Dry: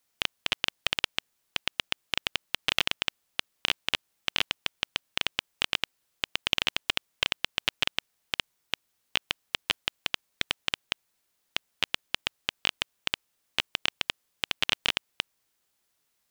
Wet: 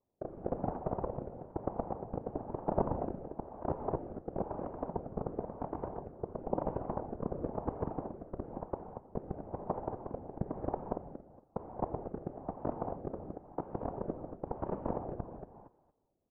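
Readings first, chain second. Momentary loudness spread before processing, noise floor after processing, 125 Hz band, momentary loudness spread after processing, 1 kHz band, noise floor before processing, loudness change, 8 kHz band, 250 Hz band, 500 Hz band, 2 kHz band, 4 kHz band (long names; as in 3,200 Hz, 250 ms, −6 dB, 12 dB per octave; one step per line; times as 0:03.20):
9 LU, −70 dBFS, +8.5 dB, 7 LU, +0.5 dB, −76 dBFS, −9.0 dB, below −40 dB, +8.5 dB, +8.0 dB, −32.0 dB, below −40 dB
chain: Butterworth low-pass 850 Hz 36 dB per octave
on a send: repeating echo 231 ms, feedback 21%, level −7.5 dB
on the sum: reverb whose tail is shaped and stops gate 260 ms flat, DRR 4 dB
rotating-speaker cabinet horn 1 Hz
random phases in short frames
level +8 dB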